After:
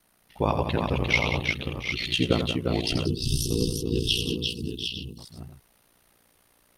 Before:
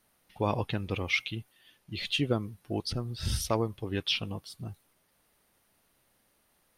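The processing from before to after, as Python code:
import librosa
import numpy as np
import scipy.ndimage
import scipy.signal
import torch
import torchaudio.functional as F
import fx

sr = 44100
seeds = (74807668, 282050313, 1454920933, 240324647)

y = fx.echo_multitap(x, sr, ms=(85, 182, 350, 707, 754, 860), db=(-8.0, -10.5, -4.5, -13.0, -7.0, -13.5))
y = fx.spec_box(y, sr, start_s=3.06, length_s=2.12, low_hz=460.0, high_hz=2600.0, gain_db=-28)
y = y * np.sin(2.0 * np.pi * 30.0 * np.arange(len(y)) / sr)
y = F.gain(torch.from_numpy(y), 7.0).numpy()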